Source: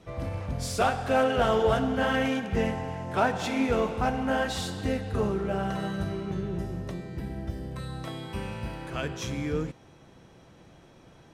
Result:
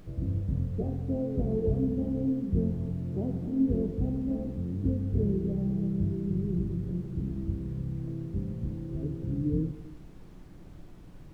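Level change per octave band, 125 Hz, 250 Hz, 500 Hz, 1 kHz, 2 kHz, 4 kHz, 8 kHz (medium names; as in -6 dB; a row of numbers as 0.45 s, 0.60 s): +3.5 dB, +1.5 dB, -8.0 dB, under -20 dB, under -30 dB, under -25 dB, under -20 dB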